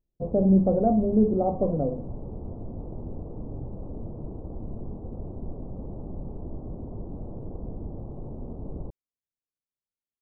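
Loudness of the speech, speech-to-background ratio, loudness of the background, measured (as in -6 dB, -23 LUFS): -23.5 LUFS, 15.5 dB, -39.0 LUFS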